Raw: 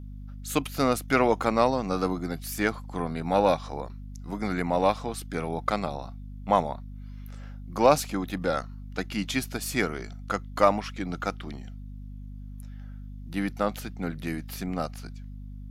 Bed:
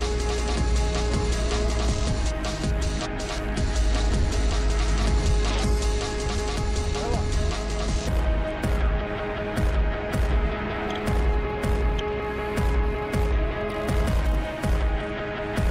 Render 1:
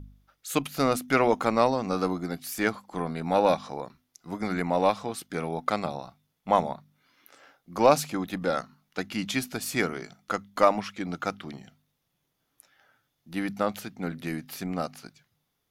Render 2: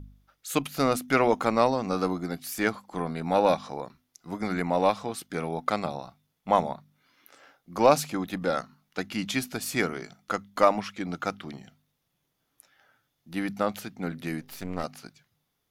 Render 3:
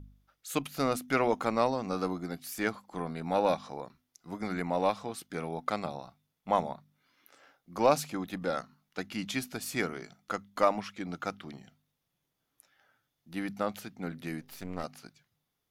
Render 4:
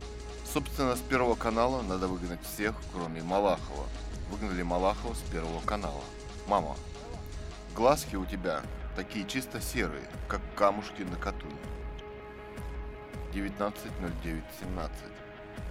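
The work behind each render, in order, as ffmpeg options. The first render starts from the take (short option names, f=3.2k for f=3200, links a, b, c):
-af "bandreject=f=50:t=h:w=4,bandreject=f=100:t=h:w=4,bandreject=f=150:t=h:w=4,bandreject=f=200:t=h:w=4,bandreject=f=250:t=h:w=4"
-filter_complex "[0:a]asettb=1/sr,asplit=3[a][b][c];[a]atrim=end=14.414[d];[b]atrim=start=14.41:end=14.84,asetpts=PTS-STARTPTS,afade=t=in:d=0.004:c=qsin,afade=t=out:st=0.426:d=0.004:c=qsin,aeval=exprs='if(lt(val(0),0),0.251*val(0),val(0))':c=same[e];[c]atrim=start=14.836[f];[d][e]acrossfade=d=0.004:c1=hsin:c2=qsin[g];[g][f]acrossfade=d=0.004:c1=qsin:c2=hsin"
-af "volume=-5dB"
-filter_complex "[1:a]volume=-16.5dB[a];[0:a][a]amix=inputs=2:normalize=0"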